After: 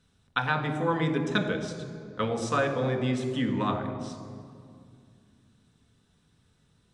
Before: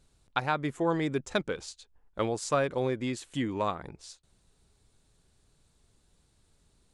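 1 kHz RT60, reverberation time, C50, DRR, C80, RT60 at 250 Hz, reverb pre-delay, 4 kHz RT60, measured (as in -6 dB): 2.1 s, 2.2 s, 7.5 dB, 3.0 dB, 8.5 dB, 3.1 s, 3 ms, 1.5 s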